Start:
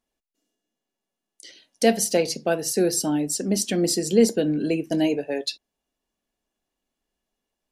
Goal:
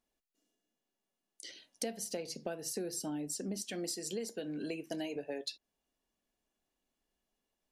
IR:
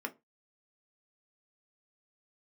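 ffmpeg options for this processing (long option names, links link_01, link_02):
-filter_complex "[0:a]asettb=1/sr,asplit=3[link_01][link_02][link_03];[link_01]atrim=end=3.624[link_04];[link_02]atrim=start=3.62:end=5.16,asetpts=PTS-STARTPTS,afade=type=in:duration=0.004:curve=qsin,afade=type=out:start_time=1.536:duration=0.004:curve=qsin,lowshelf=frequency=430:gain=-11[link_05];[link_03]atrim=start=5.156[link_06];[link_04][link_05]acrossfade=duration=0.004:curve1=hsin:curve2=qsin[link_07];[link_07][link_06]acrossfade=duration=0.004:curve1=qsin:curve2=hsin,acompressor=threshold=-32dB:ratio=12,volume=-3.5dB"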